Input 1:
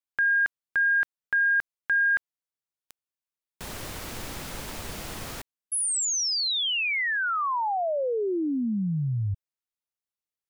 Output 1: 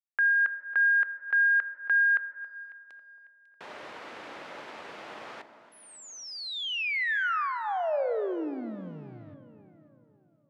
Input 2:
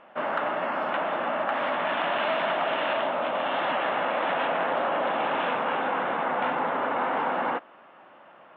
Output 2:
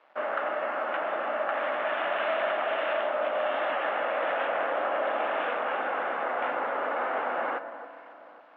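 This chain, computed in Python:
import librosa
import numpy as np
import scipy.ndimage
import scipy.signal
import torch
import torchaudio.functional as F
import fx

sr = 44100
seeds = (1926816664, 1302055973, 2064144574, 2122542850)

p1 = fx.dynamic_eq(x, sr, hz=940.0, q=4.3, threshold_db=-45.0, ratio=4.0, max_db=-8)
p2 = np.sign(p1) * np.maximum(np.abs(p1) - 10.0 ** (-53.0 / 20.0), 0.0)
p3 = fx.bandpass_edges(p2, sr, low_hz=430.0, high_hz=2400.0)
p4 = p3 + fx.echo_alternate(p3, sr, ms=274, hz=1500.0, feedback_pct=60, wet_db=-13, dry=0)
y = fx.rev_fdn(p4, sr, rt60_s=2.4, lf_ratio=1.55, hf_ratio=0.3, size_ms=10.0, drr_db=11.5)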